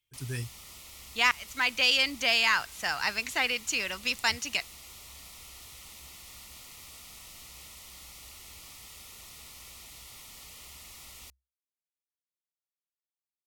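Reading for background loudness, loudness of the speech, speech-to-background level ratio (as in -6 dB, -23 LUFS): -46.0 LUFS, -26.5 LUFS, 19.5 dB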